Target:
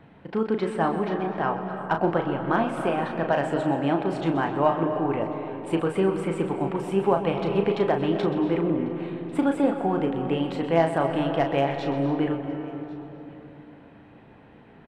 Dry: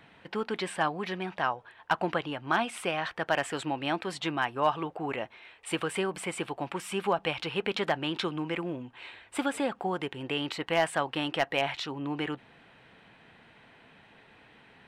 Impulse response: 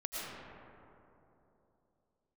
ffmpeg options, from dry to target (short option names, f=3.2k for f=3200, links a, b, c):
-filter_complex "[0:a]tiltshelf=f=1.3k:g=9.5,aeval=exprs='0.376*(cos(1*acos(clip(val(0)/0.376,-1,1)))-cos(1*PI/2))+0.00944*(cos(3*acos(clip(val(0)/0.376,-1,1)))-cos(3*PI/2))':c=same,asplit=2[a][b];[b]adelay=36,volume=-7dB[c];[a][c]amix=inputs=2:normalize=0,aecho=1:1:1097:0.0668,asplit=2[d][e];[1:a]atrim=start_sample=2205,adelay=128[f];[e][f]afir=irnorm=-1:irlink=0,volume=-9dB[g];[d][g]amix=inputs=2:normalize=0"